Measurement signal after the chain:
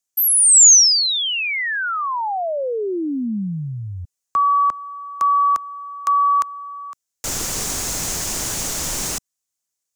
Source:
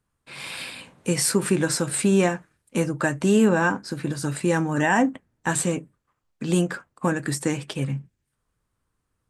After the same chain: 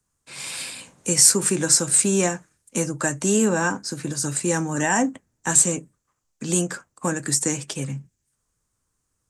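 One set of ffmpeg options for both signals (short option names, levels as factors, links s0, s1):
-filter_complex "[0:a]highshelf=f=11000:g=4.5,acrossover=split=190|720|3900[s0][s1][s2][s3];[s0]alimiter=level_in=1.26:limit=0.0631:level=0:latency=1,volume=0.794[s4];[s3]equalizer=f=6700:t=o:w=1.1:g=14.5[s5];[s4][s1][s2][s5]amix=inputs=4:normalize=0,volume=0.841"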